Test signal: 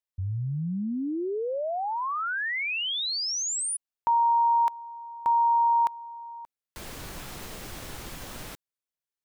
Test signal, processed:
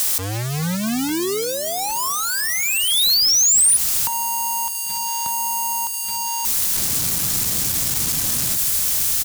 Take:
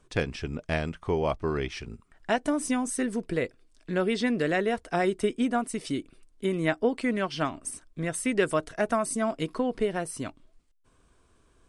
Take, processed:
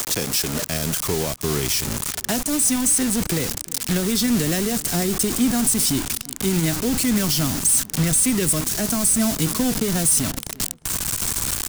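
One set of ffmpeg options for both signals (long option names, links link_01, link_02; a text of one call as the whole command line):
ffmpeg -i in.wav -filter_complex "[0:a]aeval=exprs='val(0)+0.5*0.0422*sgn(val(0))':channel_layout=same,highpass=130,bass=frequency=250:gain=-4,treble=frequency=4000:gain=14,acrossover=split=230|390|4000[link_01][link_02][link_03][link_04];[link_03]acompressor=threshold=-33dB:ratio=6:attack=16:release=458:knee=1:detection=rms[link_05];[link_01][link_02][link_05][link_04]amix=inputs=4:normalize=0,alimiter=limit=-16.5dB:level=0:latency=1:release=80,acontrast=49,acrusher=bits=4:mix=0:aa=0.000001,asplit=2[link_06][link_07];[link_07]adelay=353,lowpass=frequency=1900:poles=1,volume=-20dB,asplit=2[link_08][link_09];[link_09]adelay=353,lowpass=frequency=1900:poles=1,volume=0.49,asplit=2[link_10][link_11];[link_11]adelay=353,lowpass=frequency=1900:poles=1,volume=0.49,asplit=2[link_12][link_13];[link_13]adelay=353,lowpass=frequency=1900:poles=1,volume=0.49[link_14];[link_06][link_08][link_10][link_12][link_14]amix=inputs=5:normalize=0,asubboost=boost=5.5:cutoff=170" out.wav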